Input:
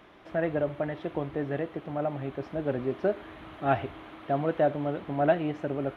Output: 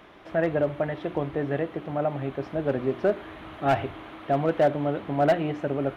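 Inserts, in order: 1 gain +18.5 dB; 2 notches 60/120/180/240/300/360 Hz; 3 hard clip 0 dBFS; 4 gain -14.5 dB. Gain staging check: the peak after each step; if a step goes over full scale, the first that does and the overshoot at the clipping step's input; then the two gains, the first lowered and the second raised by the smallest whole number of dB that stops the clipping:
+8.5, +8.5, 0.0, -14.5 dBFS; step 1, 8.5 dB; step 1 +9.5 dB, step 4 -5.5 dB

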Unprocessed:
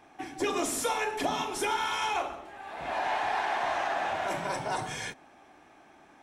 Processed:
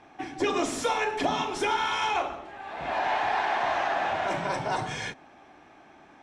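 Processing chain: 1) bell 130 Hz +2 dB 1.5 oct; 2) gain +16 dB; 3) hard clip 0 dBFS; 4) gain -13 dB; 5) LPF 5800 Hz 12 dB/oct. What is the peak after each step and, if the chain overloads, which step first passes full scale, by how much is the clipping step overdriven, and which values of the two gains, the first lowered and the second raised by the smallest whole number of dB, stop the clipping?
-18.0, -2.0, -2.0, -15.0, -15.5 dBFS; no overload

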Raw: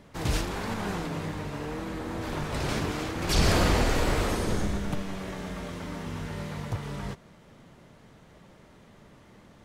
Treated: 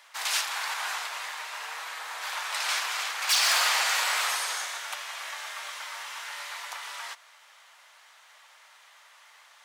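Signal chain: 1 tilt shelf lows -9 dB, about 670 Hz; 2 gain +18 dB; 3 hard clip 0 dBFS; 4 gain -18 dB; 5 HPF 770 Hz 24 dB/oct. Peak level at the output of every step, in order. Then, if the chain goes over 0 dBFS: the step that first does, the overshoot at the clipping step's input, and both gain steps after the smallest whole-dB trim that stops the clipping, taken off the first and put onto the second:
-9.0, +9.0, 0.0, -18.0, -12.5 dBFS; step 2, 9.0 dB; step 2 +9 dB, step 4 -9 dB

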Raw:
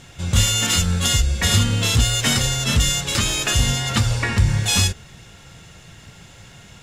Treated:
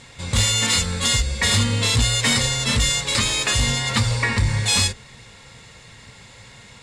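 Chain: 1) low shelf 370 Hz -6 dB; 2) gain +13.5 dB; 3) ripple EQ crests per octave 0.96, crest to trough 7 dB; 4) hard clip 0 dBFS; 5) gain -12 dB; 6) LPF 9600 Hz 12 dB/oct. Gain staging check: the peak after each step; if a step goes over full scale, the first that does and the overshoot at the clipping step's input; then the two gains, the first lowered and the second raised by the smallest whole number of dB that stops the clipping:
-5.5, +8.0, +9.0, 0.0, -12.0, -10.5 dBFS; step 2, 9.0 dB; step 2 +4.5 dB, step 5 -3 dB

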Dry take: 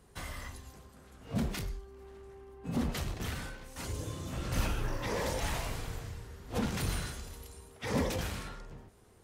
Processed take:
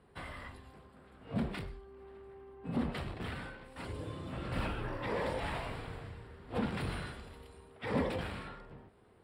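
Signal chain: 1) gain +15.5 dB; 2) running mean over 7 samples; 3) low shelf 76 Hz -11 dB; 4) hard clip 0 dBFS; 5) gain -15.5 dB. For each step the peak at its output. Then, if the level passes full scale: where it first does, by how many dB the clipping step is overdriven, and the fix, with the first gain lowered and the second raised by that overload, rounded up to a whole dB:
-3.0, -3.5, -5.5, -5.5, -21.0 dBFS; no overload

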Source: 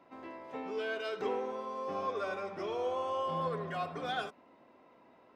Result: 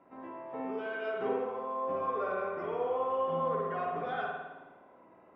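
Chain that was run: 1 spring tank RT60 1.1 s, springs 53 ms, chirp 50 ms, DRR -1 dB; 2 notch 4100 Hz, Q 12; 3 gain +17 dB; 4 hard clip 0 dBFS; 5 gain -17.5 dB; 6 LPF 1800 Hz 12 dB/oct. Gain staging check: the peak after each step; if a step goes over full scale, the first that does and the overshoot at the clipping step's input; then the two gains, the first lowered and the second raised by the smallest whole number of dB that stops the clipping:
-20.5, -20.5, -3.5, -3.5, -21.0, -21.0 dBFS; no overload

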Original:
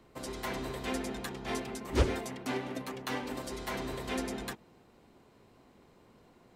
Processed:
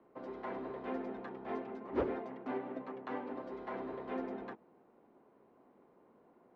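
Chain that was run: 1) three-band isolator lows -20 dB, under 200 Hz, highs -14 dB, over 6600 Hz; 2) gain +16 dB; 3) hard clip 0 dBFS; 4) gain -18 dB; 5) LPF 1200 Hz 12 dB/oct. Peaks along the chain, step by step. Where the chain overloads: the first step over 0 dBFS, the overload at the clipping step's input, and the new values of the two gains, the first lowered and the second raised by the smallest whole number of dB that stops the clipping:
-18.0, -2.0, -2.0, -20.0, -21.5 dBFS; no overload

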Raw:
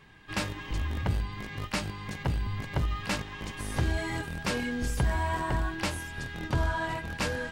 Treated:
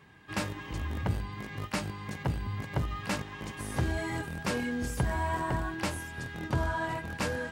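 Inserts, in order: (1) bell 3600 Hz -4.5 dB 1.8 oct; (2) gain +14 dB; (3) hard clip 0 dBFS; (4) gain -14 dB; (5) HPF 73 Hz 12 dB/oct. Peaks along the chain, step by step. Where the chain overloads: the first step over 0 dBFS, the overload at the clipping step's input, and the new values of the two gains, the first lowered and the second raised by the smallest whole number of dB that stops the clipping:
-17.5, -3.5, -3.5, -17.5, -16.0 dBFS; no overload

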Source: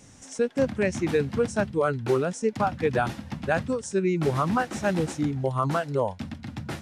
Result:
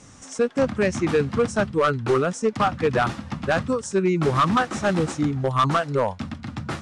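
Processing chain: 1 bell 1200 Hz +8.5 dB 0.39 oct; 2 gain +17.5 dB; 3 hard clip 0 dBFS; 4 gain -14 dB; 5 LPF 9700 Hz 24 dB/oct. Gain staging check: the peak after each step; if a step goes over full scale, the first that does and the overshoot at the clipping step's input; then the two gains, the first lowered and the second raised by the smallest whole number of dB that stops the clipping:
-8.0, +9.5, 0.0, -14.0, -13.0 dBFS; step 2, 9.5 dB; step 2 +7.5 dB, step 4 -4 dB

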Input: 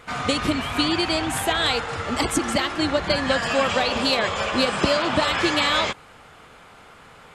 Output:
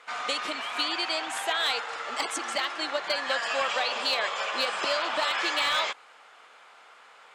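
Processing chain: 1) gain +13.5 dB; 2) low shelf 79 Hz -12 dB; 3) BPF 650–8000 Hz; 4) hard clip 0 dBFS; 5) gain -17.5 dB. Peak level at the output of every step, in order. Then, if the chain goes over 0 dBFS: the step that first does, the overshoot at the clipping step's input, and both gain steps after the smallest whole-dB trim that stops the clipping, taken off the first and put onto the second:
+8.5, +8.0, +5.5, 0.0, -17.5 dBFS; step 1, 5.5 dB; step 1 +7.5 dB, step 5 -11.5 dB

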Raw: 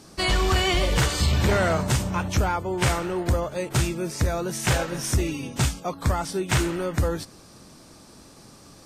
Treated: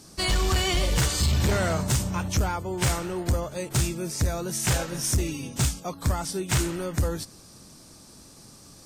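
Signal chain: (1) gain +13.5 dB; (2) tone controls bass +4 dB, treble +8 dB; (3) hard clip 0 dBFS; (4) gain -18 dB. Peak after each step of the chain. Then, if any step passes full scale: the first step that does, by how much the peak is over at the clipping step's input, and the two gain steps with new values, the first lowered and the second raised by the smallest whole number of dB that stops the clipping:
-1.0, +6.0, 0.0, -18.0 dBFS; step 2, 6.0 dB; step 1 +7.5 dB, step 4 -12 dB

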